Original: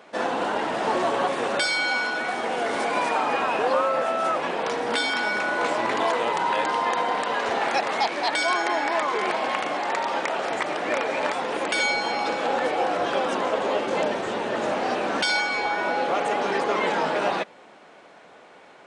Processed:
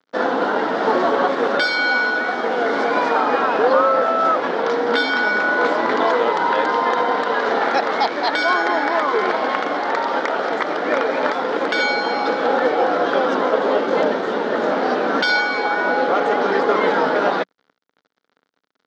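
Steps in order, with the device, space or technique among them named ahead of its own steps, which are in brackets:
blown loudspeaker (dead-zone distortion −42 dBFS; loudspeaker in its box 180–5,100 Hz, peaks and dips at 190 Hz +3 dB, 270 Hz +6 dB, 460 Hz +6 dB, 1,400 Hz +6 dB, 2,600 Hz −9 dB)
level +5 dB

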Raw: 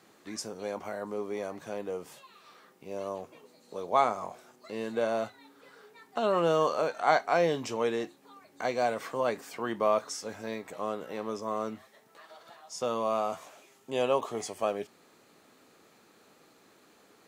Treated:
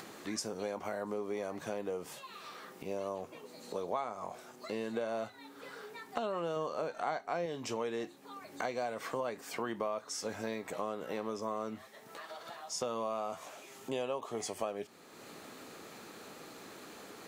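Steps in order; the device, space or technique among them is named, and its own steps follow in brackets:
0:06.56–0:07.46: low-shelf EQ 430 Hz +6 dB
upward and downward compression (upward compression, threshold −45 dBFS; downward compressor 6 to 1, threshold −37 dBFS, peak gain reduction 18.5 dB)
level +3.5 dB

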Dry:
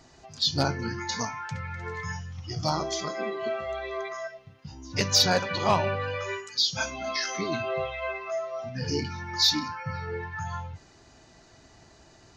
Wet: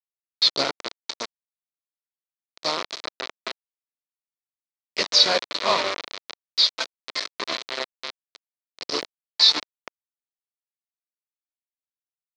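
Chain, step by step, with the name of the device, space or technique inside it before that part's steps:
hand-held game console (bit reduction 4 bits; loudspeaker in its box 440–5,000 Hz, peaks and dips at 810 Hz −9 dB, 1,600 Hz −7 dB, 2,800 Hz −5 dB, 4,100 Hz +5 dB)
level +5 dB

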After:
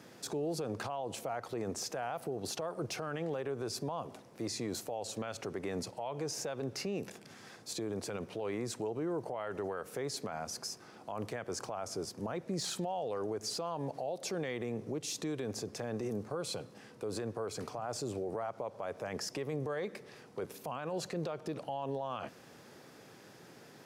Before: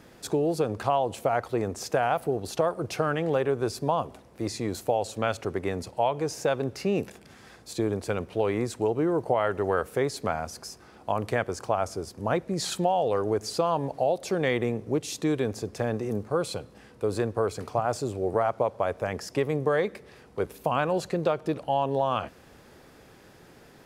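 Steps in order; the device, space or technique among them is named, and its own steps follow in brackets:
broadcast voice chain (high-pass filter 110 Hz 24 dB per octave; de-essing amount 65%; downward compressor, threshold −26 dBFS, peak gain reduction 7.5 dB; parametric band 5,700 Hz +4 dB 0.77 octaves; brickwall limiter −26 dBFS, peak gain reduction 11 dB)
level −2.5 dB

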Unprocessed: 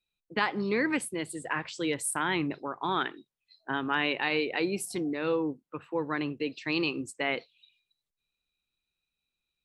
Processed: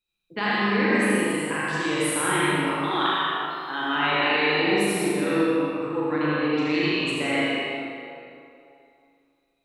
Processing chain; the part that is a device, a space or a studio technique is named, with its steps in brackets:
0:02.56–0:03.89: RIAA equalisation recording
tunnel (flutter between parallel walls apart 6.8 metres, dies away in 0.72 s; convolution reverb RT60 2.7 s, pre-delay 62 ms, DRR −6.5 dB)
level −2 dB

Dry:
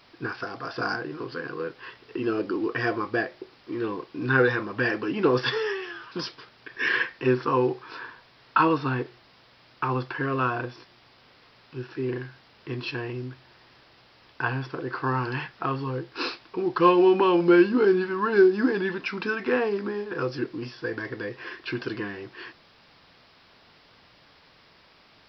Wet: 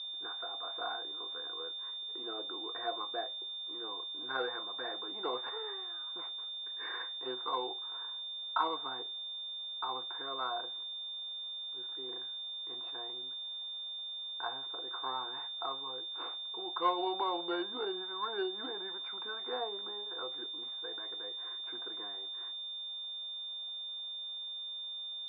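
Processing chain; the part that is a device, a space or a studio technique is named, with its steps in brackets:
toy sound module (linearly interpolated sample-rate reduction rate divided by 4×; switching amplifier with a slow clock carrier 3,600 Hz; loudspeaker in its box 720–4,000 Hz, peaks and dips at 730 Hz +8 dB, 1,700 Hz −7 dB, 2,600 Hz −9 dB)
level −8 dB

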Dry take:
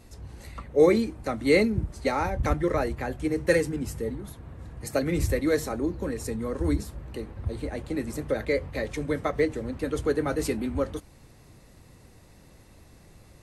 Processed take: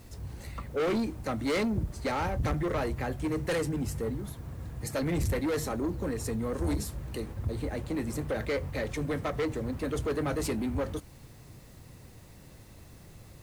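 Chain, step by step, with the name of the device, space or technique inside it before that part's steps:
0:06.53–0:07.33: high-shelf EQ 3,800 Hz +7.5 dB
open-reel tape (soft clipping −26 dBFS, distortion −7 dB; parametric band 120 Hz +4.5 dB 1.02 octaves; white noise bed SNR 32 dB)

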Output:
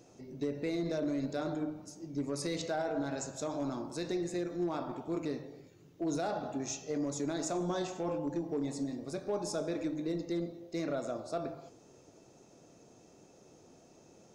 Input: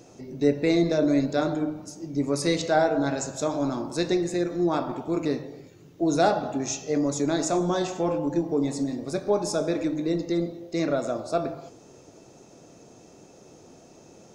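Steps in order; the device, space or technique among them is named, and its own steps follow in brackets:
limiter into clipper (brickwall limiter −17 dBFS, peak gain reduction 7.5 dB; hard clipping −18.5 dBFS, distortion −29 dB)
level −8.5 dB

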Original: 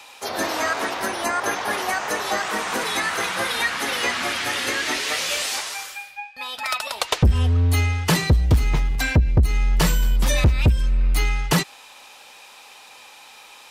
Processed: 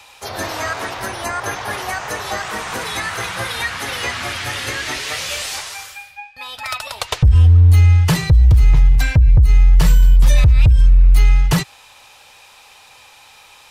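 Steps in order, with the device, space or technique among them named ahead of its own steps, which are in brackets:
car stereo with a boomy subwoofer (low shelf with overshoot 160 Hz +11 dB, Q 1.5; brickwall limiter −4.5 dBFS, peak gain reduction 9.5 dB)

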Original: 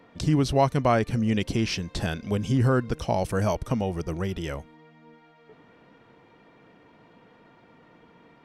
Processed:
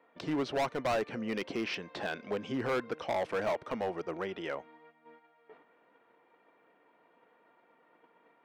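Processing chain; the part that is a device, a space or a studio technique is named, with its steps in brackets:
walkie-talkie (band-pass filter 430–2,400 Hz; hard clipping −27 dBFS, distortion −5 dB; noise gate −56 dBFS, range −8 dB)

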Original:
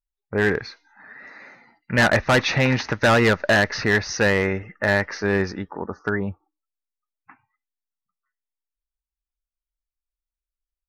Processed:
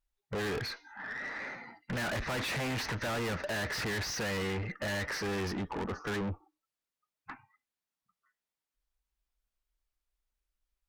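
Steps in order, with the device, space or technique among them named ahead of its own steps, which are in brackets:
tube preamp driven hard (tube saturation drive 39 dB, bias 0.25; high-shelf EQ 5,300 Hz −6 dB)
level +6.5 dB

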